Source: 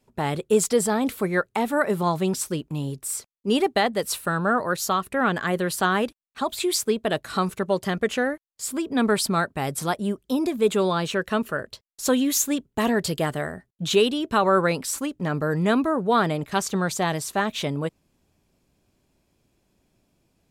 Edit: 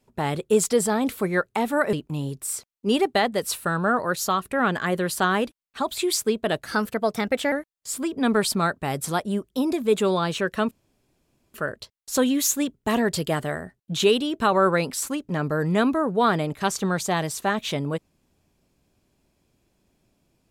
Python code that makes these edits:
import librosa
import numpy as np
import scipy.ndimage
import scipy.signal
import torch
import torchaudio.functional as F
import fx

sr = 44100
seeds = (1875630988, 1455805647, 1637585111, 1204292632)

y = fx.edit(x, sr, fx.cut(start_s=1.93, length_s=0.61),
    fx.speed_span(start_s=7.27, length_s=0.99, speed=1.15),
    fx.insert_room_tone(at_s=11.45, length_s=0.83), tone=tone)